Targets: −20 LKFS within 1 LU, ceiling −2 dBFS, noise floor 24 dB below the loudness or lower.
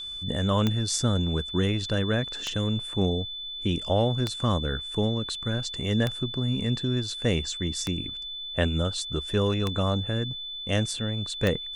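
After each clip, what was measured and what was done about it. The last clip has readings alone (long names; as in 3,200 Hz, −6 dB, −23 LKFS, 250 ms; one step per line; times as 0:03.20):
number of clicks 7; interfering tone 3,500 Hz; level of the tone −34 dBFS; integrated loudness −27.5 LKFS; sample peak −9.5 dBFS; target loudness −20.0 LKFS
→ click removal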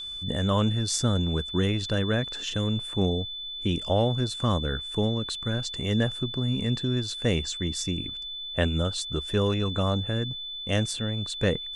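number of clicks 0; interfering tone 3,500 Hz; level of the tone −34 dBFS
→ notch filter 3,500 Hz, Q 30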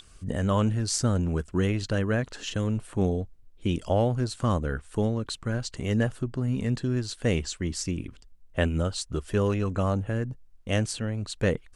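interfering tone none found; integrated loudness −28.5 LKFS; sample peak −9.0 dBFS; target loudness −20.0 LKFS
→ level +8.5 dB
brickwall limiter −2 dBFS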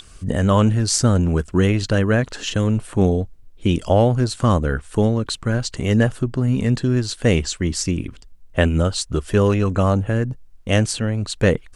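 integrated loudness −20.0 LKFS; sample peak −2.0 dBFS; background noise floor −45 dBFS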